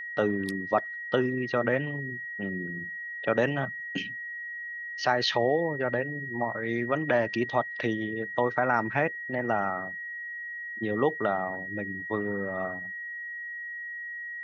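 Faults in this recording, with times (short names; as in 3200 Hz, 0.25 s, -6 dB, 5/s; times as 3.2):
tone 1900 Hz -35 dBFS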